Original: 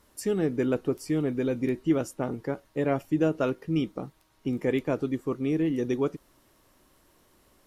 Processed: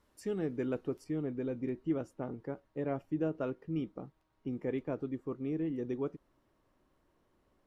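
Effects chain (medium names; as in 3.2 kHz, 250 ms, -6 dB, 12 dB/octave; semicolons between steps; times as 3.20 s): low-pass 3.6 kHz 6 dB/octave, from 1.04 s 1.4 kHz; trim -8.5 dB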